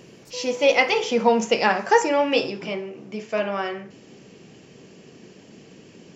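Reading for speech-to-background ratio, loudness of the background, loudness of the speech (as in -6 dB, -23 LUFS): 16.0 dB, -37.5 LUFS, -21.5 LUFS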